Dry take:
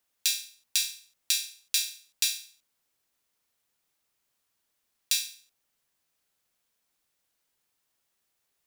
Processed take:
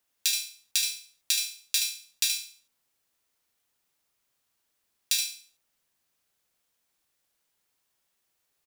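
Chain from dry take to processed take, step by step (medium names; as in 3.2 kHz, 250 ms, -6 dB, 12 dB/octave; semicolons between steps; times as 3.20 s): delay 75 ms -5.5 dB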